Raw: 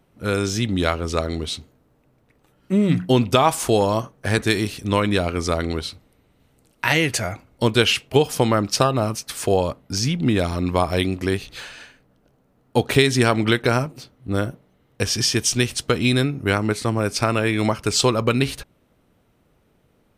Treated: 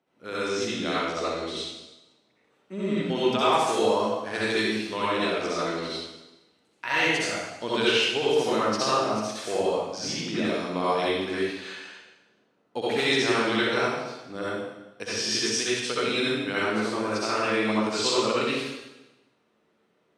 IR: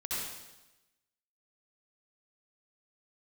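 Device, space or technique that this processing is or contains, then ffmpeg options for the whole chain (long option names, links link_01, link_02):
supermarket ceiling speaker: -filter_complex "[0:a]highpass=290,lowpass=6100[link_01];[1:a]atrim=start_sample=2205[link_02];[link_01][link_02]afir=irnorm=-1:irlink=0,volume=-7dB"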